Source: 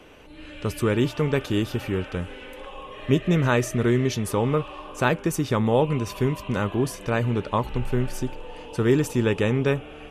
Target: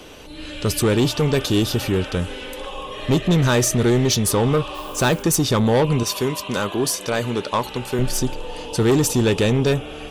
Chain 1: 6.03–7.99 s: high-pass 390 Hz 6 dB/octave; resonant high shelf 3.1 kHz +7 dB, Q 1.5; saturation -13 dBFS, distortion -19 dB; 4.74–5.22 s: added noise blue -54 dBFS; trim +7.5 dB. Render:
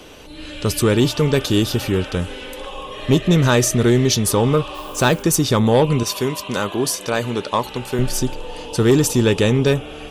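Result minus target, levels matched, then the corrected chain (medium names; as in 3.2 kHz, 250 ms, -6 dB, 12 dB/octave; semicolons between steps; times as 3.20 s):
saturation: distortion -7 dB
6.03–7.99 s: high-pass 390 Hz 6 dB/octave; resonant high shelf 3.1 kHz +7 dB, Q 1.5; saturation -19 dBFS, distortion -12 dB; 4.74–5.22 s: added noise blue -54 dBFS; trim +7.5 dB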